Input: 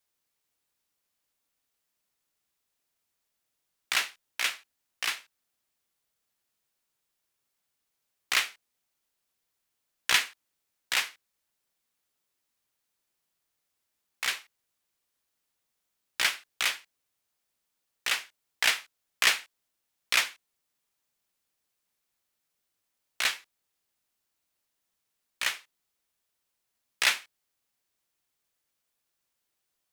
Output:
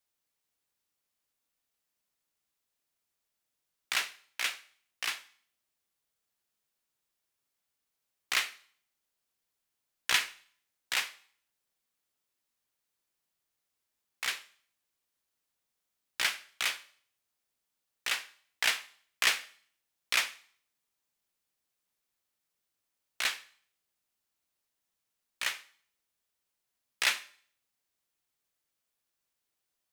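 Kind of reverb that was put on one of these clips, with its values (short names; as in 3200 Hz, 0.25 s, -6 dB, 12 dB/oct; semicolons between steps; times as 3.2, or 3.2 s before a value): Schroeder reverb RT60 0.54 s, combs from 30 ms, DRR 16 dB; gain -3.5 dB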